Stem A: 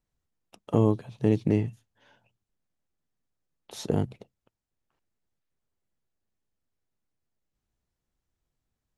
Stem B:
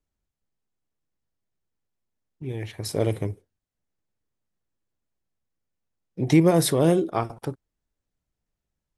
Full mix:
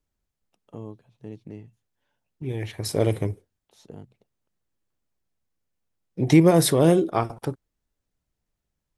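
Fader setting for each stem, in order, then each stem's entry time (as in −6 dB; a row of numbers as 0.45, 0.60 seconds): −16.5, +2.0 decibels; 0.00, 0.00 seconds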